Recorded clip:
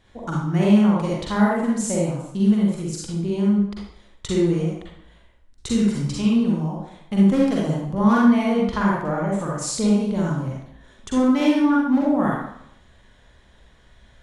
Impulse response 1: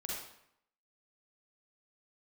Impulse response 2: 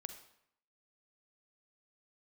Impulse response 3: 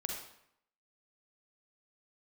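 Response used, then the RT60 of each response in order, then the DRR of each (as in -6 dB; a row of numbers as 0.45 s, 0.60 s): 1; 0.70 s, 0.70 s, 0.70 s; -4.5 dB, 8.0 dB, 0.5 dB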